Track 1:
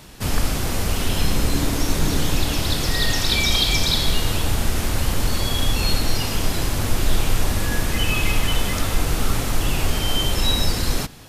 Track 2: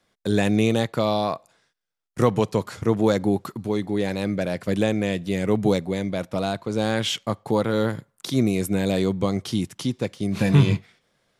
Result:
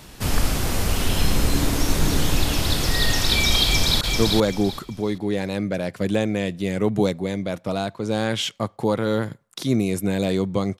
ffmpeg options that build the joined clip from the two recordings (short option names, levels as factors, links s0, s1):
-filter_complex "[0:a]apad=whole_dur=10.79,atrim=end=10.79,atrim=end=4.012[s0];[1:a]atrim=start=2.678:end=9.46[s1];[s0][s1]acrossfade=d=0.004:c1=hsin:c2=hsin,asplit=2[s2][s3];[s3]afade=t=in:st=3.64:d=0.01,afade=t=out:st=4.01:d=0.01,aecho=0:1:390|780|1170|1560:0.668344|0.167086|0.0417715|0.0104429[s4];[s2][s4]amix=inputs=2:normalize=0"